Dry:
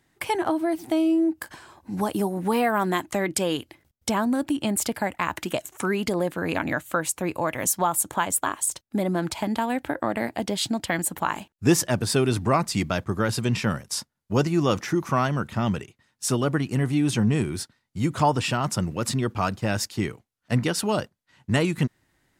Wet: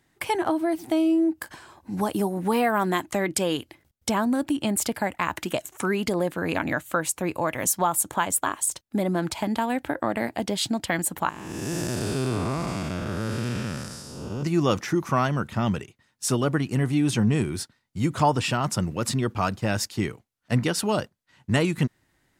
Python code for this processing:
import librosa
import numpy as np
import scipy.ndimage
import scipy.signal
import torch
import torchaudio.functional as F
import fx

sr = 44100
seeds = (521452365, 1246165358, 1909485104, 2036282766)

y = fx.spec_blur(x, sr, span_ms=384.0, at=(11.29, 14.43))